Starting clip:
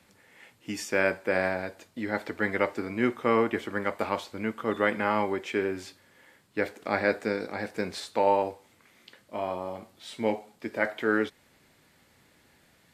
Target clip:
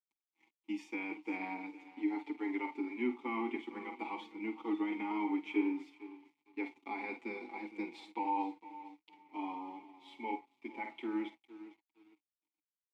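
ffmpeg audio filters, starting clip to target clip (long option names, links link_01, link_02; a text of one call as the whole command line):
ffmpeg -i in.wav -filter_complex "[0:a]highpass=130,asplit=2[link_01][link_02];[link_02]adelay=48,volume=-11dB[link_03];[link_01][link_03]amix=inputs=2:normalize=0,acrossover=split=220[link_04][link_05];[link_04]acrusher=bits=3:mix=0:aa=0.5[link_06];[link_05]equalizer=frequency=3300:width_type=o:width=0.26:gain=7.5[link_07];[link_06][link_07]amix=inputs=2:normalize=0,alimiter=limit=-18dB:level=0:latency=1:release=39,asplit=2[link_08][link_09];[link_09]aecho=0:1:456|912|1368:0.178|0.0676|0.0257[link_10];[link_08][link_10]amix=inputs=2:normalize=0,aeval=exprs='sgn(val(0))*max(abs(val(0))-0.00355,0)':channel_layout=same,asplit=3[link_11][link_12][link_13];[link_11]bandpass=frequency=300:width_type=q:width=8,volume=0dB[link_14];[link_12]bandpass=frequency=870:width_type=q:width=8,volume=-6dB[link_15];[link_13]bandpass=frequency=2240:width_type=q:width=8,volume=-9dB[link_16];[link_14][link_15][link_16]amix=inputs=3:normalize=0,highshelf=frequency=5900:gain=4.5,asplit=2[link_17][link_18];[link_18]adelay=5.6,afreqshift=-0.27[link_19];[link_17][link_19]amix=inputs=2:normalize=1,volume=8dB" out.wav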